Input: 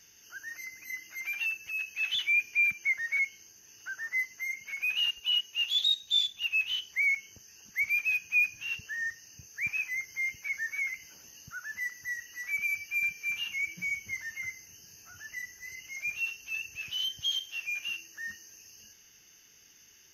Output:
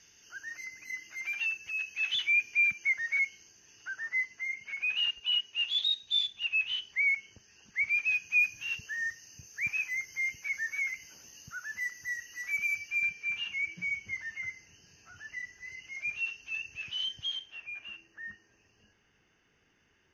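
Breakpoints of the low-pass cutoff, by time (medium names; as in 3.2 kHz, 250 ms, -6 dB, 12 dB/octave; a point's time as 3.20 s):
3.23 s 6.5 kHz
4.43 s 3.9 kHz
7.84 s 3.9 kHz
8.48 s 10 kHz
12.63 s 10 kHz
13.22 s 3.8 kHz
17.12 s 3.8 kHz
17.62 s 1.7 kHz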